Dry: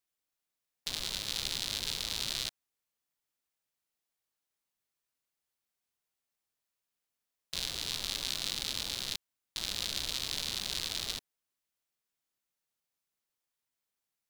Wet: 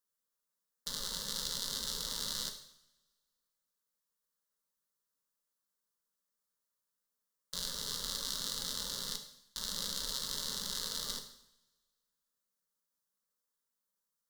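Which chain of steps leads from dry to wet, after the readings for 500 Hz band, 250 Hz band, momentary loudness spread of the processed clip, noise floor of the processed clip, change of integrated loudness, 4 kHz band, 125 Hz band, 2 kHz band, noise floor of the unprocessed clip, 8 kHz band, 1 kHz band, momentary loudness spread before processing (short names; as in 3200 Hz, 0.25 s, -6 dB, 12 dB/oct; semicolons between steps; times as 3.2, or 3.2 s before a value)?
-0.5 dB, -1.0 dB, 7 LU, under -85 dBFS, -2.5 dB, -3.5 dB, -4.0 dB, -7.5 dB, under -85 dBFS, 0.0 dB, -0.5 dB, 5 LU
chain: fixed phaser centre 490 Hz, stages 8; two-slope reverb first 0.7 s, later 1.9 s, from -23 dB, DRR 4 dB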